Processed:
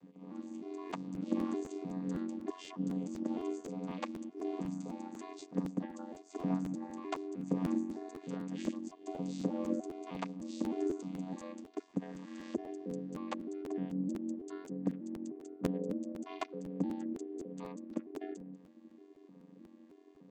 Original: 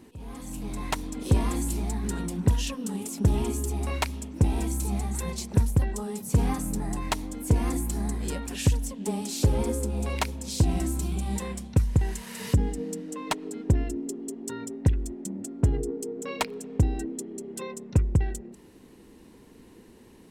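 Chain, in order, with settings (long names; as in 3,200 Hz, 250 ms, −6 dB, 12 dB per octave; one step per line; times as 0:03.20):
vocoder with an arpeggio as carrier minor triad, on A#3, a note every 306 ms
ring modulation 45 Hz
regular buffer underruns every 0.25 s, samples 512, repeat, from 0:00.89
level −4.5 dB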